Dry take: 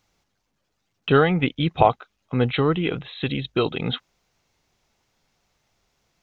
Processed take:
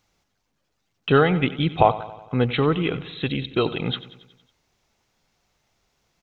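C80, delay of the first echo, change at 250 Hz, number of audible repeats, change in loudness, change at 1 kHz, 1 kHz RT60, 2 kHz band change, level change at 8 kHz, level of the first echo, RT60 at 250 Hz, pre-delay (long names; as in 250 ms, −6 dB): no reverb audible, 92 ms, 0.0 dB, 5, 0.0 dB, 0.0 dB, no reverb audible, 0.0 dB, can't be measured, −16.0 dB, no reverb audible, no reverb audible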